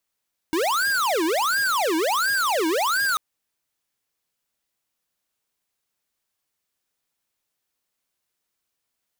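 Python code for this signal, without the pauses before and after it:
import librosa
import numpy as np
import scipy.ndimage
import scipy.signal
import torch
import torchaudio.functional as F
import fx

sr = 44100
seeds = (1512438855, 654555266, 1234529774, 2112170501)

y = fx.siren(sr, length_s=2.64, kind='wail', low_hz=314.0, high_hz=1630.0, per_s=1.4, wave='square', level_db=-22.0)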